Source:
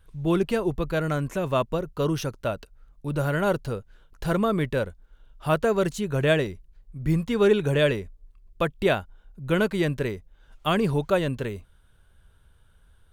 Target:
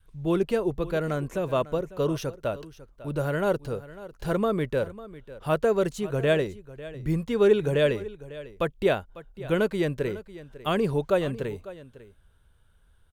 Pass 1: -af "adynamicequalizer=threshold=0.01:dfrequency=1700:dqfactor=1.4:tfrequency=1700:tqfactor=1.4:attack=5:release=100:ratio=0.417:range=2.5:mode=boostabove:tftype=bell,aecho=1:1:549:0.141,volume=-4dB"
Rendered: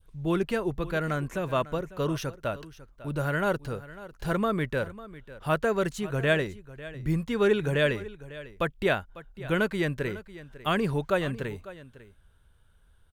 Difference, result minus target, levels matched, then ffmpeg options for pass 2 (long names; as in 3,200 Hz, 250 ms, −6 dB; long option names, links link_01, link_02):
2,000 Hz band +5.5 dB
-af "adynamicequalizer=threshold=0.01:dfrequency=470:dqfactor=1.4:tfrequency=470:tqfactor=1.4:attack=5:release=100:ratio=0.417:range=2.5:mode=boostabove:tftype=bell,aecho=1:1:549:0.141,volume=-4dB"